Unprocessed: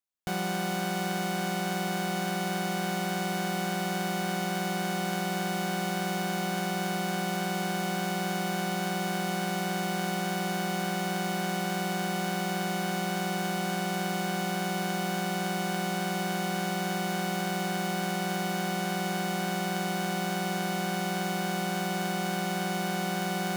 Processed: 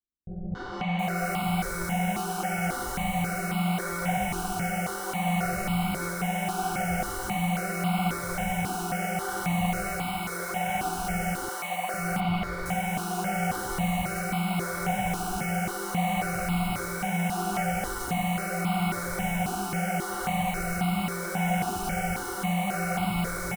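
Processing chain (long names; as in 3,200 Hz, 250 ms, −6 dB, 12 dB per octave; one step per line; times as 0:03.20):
0:09.70–0:10.85: parametric band 150 Hz −8 dB 0.83 octaves
on a send: loudspeakers that aren't time-aligned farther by 40 metres −11 dB, 59 metres −2 dB, 85 metres −2 dB
on the sum: multi-voice chorus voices 2, 1.3 Hz, delay 21 ms, depth 3 ms
in parallel at −7.5 dB: sample-and-hold swept by an LFO 35×, swing 160% 0.74 Hz
0:11.48–0:11.94: on the sum: three-way crossover with the lows and the highs turned down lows −20 dB, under 380 Hz, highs −14 dB, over 3,600 Hz
three-band delay without the direct sound lows, mids, highs 280/720 ms, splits 410/4,300 Hz
step-sequenced phaser 3.7 Hz 560–1,700 Hz
level +3.5 dB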